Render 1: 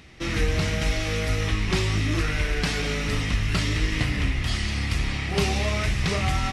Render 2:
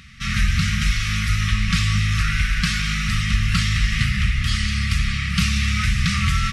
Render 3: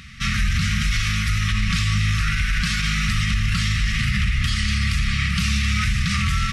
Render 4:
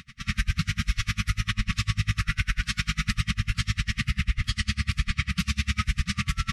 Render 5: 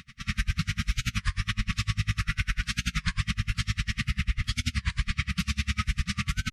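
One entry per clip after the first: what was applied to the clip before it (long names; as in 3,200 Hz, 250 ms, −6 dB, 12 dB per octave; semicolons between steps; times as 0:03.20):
brick-wall band-stop 240–1,100 Hz; level +5 dB
brickwall limiter −16 dBFS, peak gain reduction 9 dB; level +3.5 dB
tremolo with a sine in dB 10 Hz, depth 33 dB
wow of a warped record 33 1/3 rpm, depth 250 cents; level −2 dB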